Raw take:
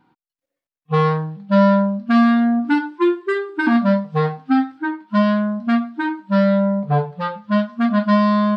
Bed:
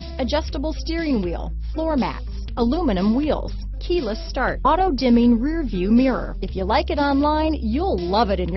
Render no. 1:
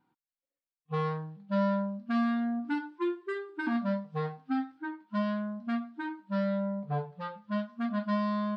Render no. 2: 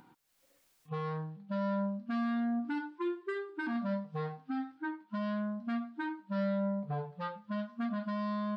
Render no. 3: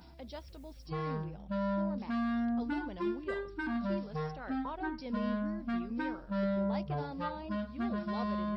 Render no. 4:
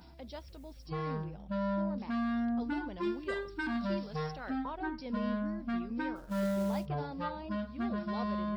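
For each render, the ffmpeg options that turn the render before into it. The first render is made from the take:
ffmpeg -i in.wav -af "volume=-14.5dB" out.wav
ffmpeg -i in.wav -af "acompressor=mode=upward:threshold=-49dB:ratio=2.5,alimiter=level_in=3.5dB:limit=-24dB:level=0:latency=1:release=79,volume=-3.5dB" out.wav
ffmpeg -i in.wav -i bed.wav -filter_complex "[1:a]volume=-24dB[link_01];[0:a][link_01]amix=inputs=2:normalize=0" out.wav
ffmpeg -i in.wav -filter_complex "[0:a]asettb=1/sr,asplit=3[link_01][link_02][link_03];[link_01]atrim=end=3.034[link_04];[link_02]atrim=start=3.03:end=4.51,asetpts=PTS-STARTPTS,afade=type=in:duration=0.004:curve=qsin,afade=type=out:start_time=1.476:duration=0.004:curve=qsin,highshelf=frequency=2900:gain=9.5[link_05];[link_03]atrim=start=4.506[link_06];[link_04][link_05]acrossfade=duration=0.004:curve1=hsin:curve2=qsin[link_07];[link_07][link_06]acrossfade=duration=0.004:curve1=qsin:curve2=hsin,asplit=3[link_08][link_09][link_10];[link_08]afade=type=out:start_time=6.15:duration=0.02[link_11];[link_09]acrusher=bits=5:mode=log:mix=0:aa=0.000001,afade=type=in:start_time=6.15:duration=0.02,afade=type=out:start_time=6.85:duration=0.02[link_12];[link_10]afade=type=in:start_time=6.85:duration=0.02[link_13];[link_11][link_12][link_13]amix=inputs=3:normalize=0" out.wav

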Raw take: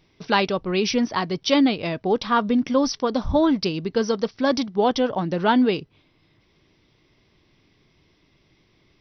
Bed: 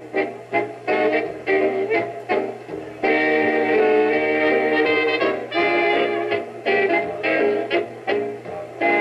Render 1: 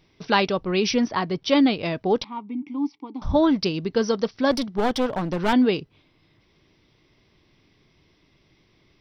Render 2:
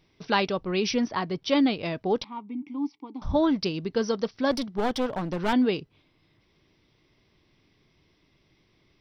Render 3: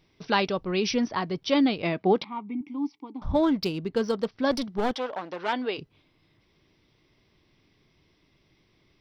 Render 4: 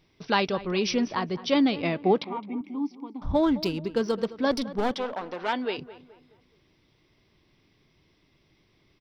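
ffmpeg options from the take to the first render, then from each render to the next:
ffmpeg -i in.wav -filter_complex "[0:a]asettb=1/sr,asplit=3[link_01][link_02][link_03];[link_01]atrim=end=1.084[link_04];[link_02]atrim=start=1.08:end=1.56,asetpts=PTS-STARTPTS,afade=type=in:duration=0.004:curve=qsin,afade=type=out:start_time=0.476:duration=0.004:curve=qsin,highshelf=frequency=5100:gain=-10.5[link_05];[link_03]atrim=start=1.556[link_06];[link_04][link_05]acrossfade=duration=0.004:curve1=hsin:curve2=qsin[link_07];[link_07][link_06]acrossfade=duration=0.004:curve1=qsin:curve2=hsin,asettb=1/sr,asplit=3[link_08][link_09][link_10];[link_08]atrim=end=2.244[link_11];[link_09]atrim=start=2.24:end=3.22,asetpts=PTS-STARTPTS,afade=type=in:duration=0.004:curve=qsin,afade=type=out:start_time=0.976:duration=0.004:curve=qsin,asplit=3[link_12][link_13][link_14];[link_12]bandpass=frequency=300:width_type=q:width=8,volume=0dB[link_15];[link_13]bandpass=frequency=870:width_type=q:width=8,volume=-6dB[link_16];[link_14]bandpass=frequency=2240:width_type=q:width=8,volume=-9dB[link_17];[link_15][link_16][link_17]amix=inputs=3:normalize=0[link_18];[link_10]atrim=start=3.216[link_19];[link_11][link_18]acrossfade=duration=0.004:curve1=hsin:curve2=qsin[link_20];[link_20][link_19]acrossfade=duration=0.004:curve1=qsin:curve2=hsin,asettb=1/sr,asplit=3[link_21][link_22][link_23];[link_21]atrim=end=4.514[link_24];[link_22]atrim=start=4.51:end=5.53,asetpts=PTS-STARTPTS,afade=type=in:duration=0.004:curve=qsin,afade=type=out:start_time=1.016:duration=0.004:curve=qsin,aeval=exprs='clip(val(0),-1,0.0473)':channel_layout=same[link_25];[link_23]atrim=start=5.526[link_26];[link_24][link_25]acrossfade=duration=0.004:curve1=hsin:curve2=qsin[link_27];[link_27][link_26]acrossfade=duration=0.004:curve1=qsin:curve2=hsin" out.wav
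ffmpeg -i in.wav -af "volume=-4dB" out.wav
ffmpeg -i in.wav -filter_complex "[0:a]asettb=1/sr,asplit=3[link_01][link_02][link_03];[link_01]atrim=end=1.824[link_04];[link_02]atrim=start=1.82:end=2.61,asetpts=PTS-STARTPTS,afade=type=in:duration=0.004:curve=qsin,afade=type=out:start_time=0.786:duration=0.004:curve=qsin,highpass=120,equalizer=frequency=190:width_type=q:width=4:gain=7,equalizer=frequency=360:width_type=q:width=4:gain=6,equalizer=frequency=750:width_type=q:width=4:gain=5,equalizer=frequency=1200:width_type=q:width=4:gain=4,equalizer=frequency=2200:width_type=q:width=4:gain=7,lowpass=frequency=4800:width=0.5412,lowpass=frequency=4800:width=1.3066[link_05];[link_03]atrim=start=2.606[link_06];[link_04][link_05]acrossfade=duration=0.004:curve1=hsin:curve2=qsin[link_07];[link_07][link_06]acrossfade=duration=0.004:curve1=qsin:curve2=hsin,asettb=1/sr,asplit=3[link_08][link_09][link_10];[link_08]atrim=end=3.124[link_11];[link_09]atrim=start=3.12:end=4.43,asetpts=PTS-STARTPTS,afade=type=in:duration=0.004:curve=qsin,afade=type=out:start_time=1.306:duration=0.004:curve=qsin,adynamicsmooth=sensitivity=5:basefreq=3400[link_12];[link_10]atrim=start=4.426[link_13];[link_11][link_12]acrossfade=duration=0.004:curve1=hsin:curve2=qsin[link_14];[link_14][link_13]acrossfade=duration=0.004:curve1=qsin:curve2=hsin,asplit=3[link_15][link_16][link_17];[link_15]afade=type=out:start_time=4.93:duration=0.02[link_18];[link_16]highpass=470,lowpass=4700,afade=type=in:start_time=4.93:duration=0.02,afade=type=out:start_time=5.77:duration=0.02[link_19];[link_17]afade=type=in:start_time=5.77:duration=0.02[link_20];[link_18][link_19][link_20]amix=inputs=3:normalize=0" out.wav
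ffmpeg -i in.wav -filter_complex "[0:a]asplit=2[link_01][link_02];[link_02]adelay=213,lowpass=frequency=2200:poles=1,volume=-16dB,asplit=2[link_03][link_04];[link_04]adelay=213,lowpass=frequency=2200:poles=1,volume=0.41,asplit=2[link_05][link_06];[link_06]adelay=213,lowpass=frequency=2200:poles=1,volume=0.41,asplit=2[link_07][link_08];[link_08]adelay=213,lowpass=frequency=2200:poles=1,volume=0.41[link_09];[link_01][link_03][link_05][link_07][link_09]amix=inputs=5:normalize=0" out.wav

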